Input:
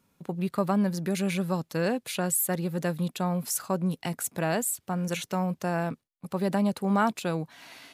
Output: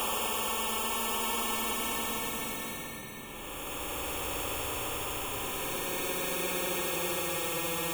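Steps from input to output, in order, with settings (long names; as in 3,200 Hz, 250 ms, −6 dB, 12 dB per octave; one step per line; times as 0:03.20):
brickwall limiter −24 dBFS, peak gain reduction 11.5 dB
decimation without filtering 22×
phaser with its sweep stopped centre 1,000 Hz, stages 8
extreme stretch with random phases 27×, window 0.10 s, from 0:07.02
every bin compressed towards the loudest bin 2 to 1
level +5 dB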